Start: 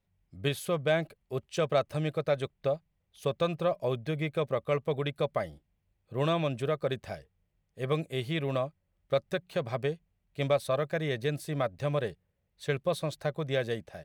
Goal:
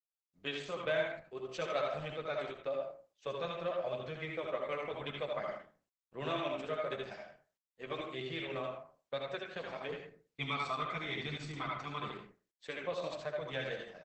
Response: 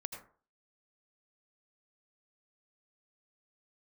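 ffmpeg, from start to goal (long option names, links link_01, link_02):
-filter_complex "[0:a]highpass=frequency=150:width=0.5412,highpass=frequency=150:width=1.3066,bandreject=frequency=60:width_type=h:width=6,bandreject=frequency=120:width_type=h:width=6,bandreject=frequency=180:width_type=h:width=6,bandreject=frequency=240:width_type=h:width=6,bandreject=frequency=300:width_type=h:width=6,bandreject=frequency=360:width_type=h:width=6,bandreject=frequency=420:width_type=h:width=6,agate=range=-33dB:threshold=-47dB:ratio=3:detection=peak,lowpass=frequency=1800:poles=1,tiltshelf=frequency=1200:gain=-7.5,asettb=1/sr,asplit=3[link_01][link_02][link_03];[link_01]atrim=end=9.924[link_04];[link_02]atrim=start=9.92:end=12.09,asetpts=PTS-STARTPTS,afade=type=in:duration=0.004:curve=qsin,afade=type=out:start_time=2.166:duration=0.004:curve=qsin,aecho=1:1:0.9:0.91,atrim=end_sample=95697[link_05];[link_03]atrim=start=12.086[link_06];[link_04][link_05]acrossfade=duration=0.004:curve1=hsin:curve2=qsin[link_07];[link_07][link_06]acrossfade=duration=0.004:curve1=qsin:curve2=hsin,flanger=delay=8:depth=3.2:regen=-18:speed=0.97:shape=sinusoidal,aecho=1:1:45|78:0.141|0.596[link_08];[1:a]atrim=start_sample=2205,asetrate=52920,aresample=44100[link_09];[link_08][link_09]afir=irnorm=-1:irlink=0,volume=3.5dB" -ar 48000 -c:a libopus -b:a 12k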